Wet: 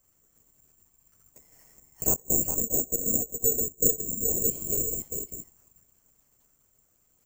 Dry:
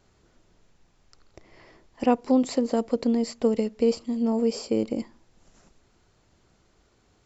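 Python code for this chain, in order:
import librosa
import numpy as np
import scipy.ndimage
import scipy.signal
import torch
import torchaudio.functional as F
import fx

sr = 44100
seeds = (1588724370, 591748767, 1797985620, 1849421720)

y = fx.ellip_lowpass(x, sr, hz=800.0, order=4, stop_db=40, at=(2.21, 4.42), fade=0.02)
y = fx.dynamic_eq(y, sr, hz=440.0, q=5.1, threshold_db=-36.0, ratio=4.0, max_db=4)
y = y + 10.0 ** (-6.5 / 20.0) * np.pad(y, (int(407 * sr / 1000.0), 0))[:len(y)]
y = fx.lpc_vocoder(y, sr, seeds[0], excitation='whisper', order=10)
y = (np.kron(scipy.signal.resample_poly(y, 1, 6), np.eye(6)[0]) * 6)[:len(y)]
y = y * librosa.db_to_amplitude(-12.5)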